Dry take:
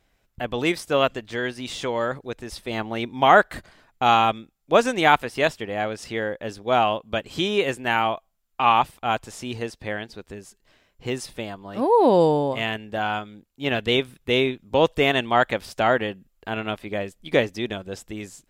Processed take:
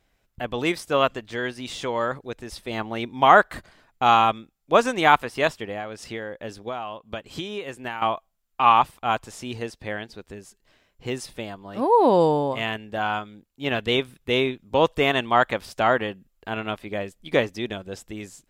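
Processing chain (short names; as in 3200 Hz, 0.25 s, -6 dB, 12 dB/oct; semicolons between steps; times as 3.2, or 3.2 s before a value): dynamic EQ 1100 Hz, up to +5 dB, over -35 dBFS, Q 2.3; 5.71–8.02 compressor 10:1, threshold -27 dBFS, peak gain reduction 14 dB; gain -1.5 dB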